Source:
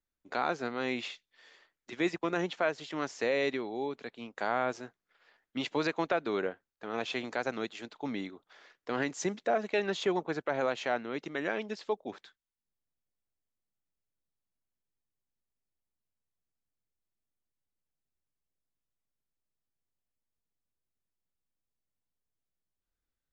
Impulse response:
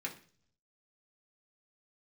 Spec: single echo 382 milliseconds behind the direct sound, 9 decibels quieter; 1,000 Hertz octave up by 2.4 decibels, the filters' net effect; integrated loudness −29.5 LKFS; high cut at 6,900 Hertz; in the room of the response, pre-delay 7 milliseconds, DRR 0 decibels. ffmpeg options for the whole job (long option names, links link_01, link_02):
-filter_complex "[0:a]lowpass=6900,equalizer=frequency=1000:width_type=o:gain=3.5,aecho=1:1:382:0.355,asplit=2[link_01][link_02];[1:a]atrim=start_sample=2205,adelay=7[link_03];[link_02][link_03]afir=irnorm=-1:irlink=0,volume=-1dB[link_04];[link_01][link_04]amix=inputs=2:normalize=0,volume=0.5dB"